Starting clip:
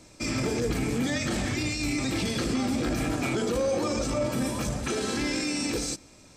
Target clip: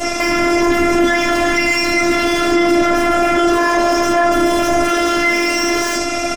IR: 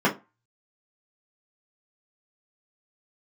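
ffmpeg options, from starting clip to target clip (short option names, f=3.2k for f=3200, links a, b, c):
-filter_complex "[0:a]acompressor=threshold=-35dB:ratio=2.5,aemphasis=mode=production:type=cd,aecho=1:1:1.5:0.92,aecho=1:1:80:0.133,aeval=exprs='0.0376*(abs(mod(val(0)/0.0376+3,4)-2)-1)':c=same,equalizer=f=1.5k:w=1.5:g=2.5[a];[1:a]atrim=start_sample=2205[b];[a][b]afir=irnorm=-1:irlink=0,afftfilt=real='hypot(re,im)*cos(PI*b)':imag='0':win_size=512:overlap=0.75,alimiter=level_in=22.5dB:limit=-1dB:release=50:level=0:latency=1,volume=-1dB"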